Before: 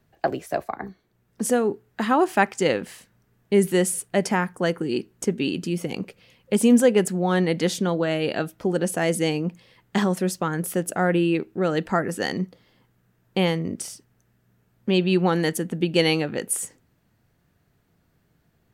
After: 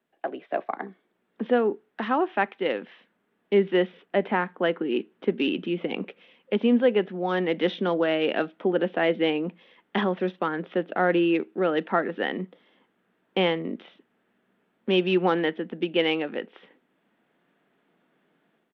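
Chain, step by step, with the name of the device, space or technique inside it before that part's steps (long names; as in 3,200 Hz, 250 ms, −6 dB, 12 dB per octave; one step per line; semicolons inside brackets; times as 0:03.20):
high-pass filter 180 Hz 12 dB per octave
0:04.04–0:04.50: low-pass filter 3,000 Hz 6 dB per octave
Bluetooth headset (high-pass filter 200 Hz 24 dB per octave; automatic gain control gain up to 11.5 dB; downsampling to 8,000 Hz; level −8.5 dB; SBC 64 kbit/s 32,000 Hz)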